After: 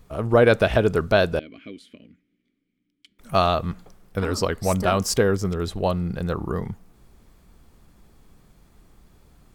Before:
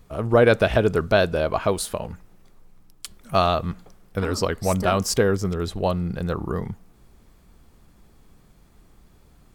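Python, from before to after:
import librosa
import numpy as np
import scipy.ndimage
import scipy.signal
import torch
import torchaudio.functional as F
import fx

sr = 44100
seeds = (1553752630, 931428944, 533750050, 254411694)

y = fx.vowel_filter(x, sr, vowel='i', at=(1.39, 3.19))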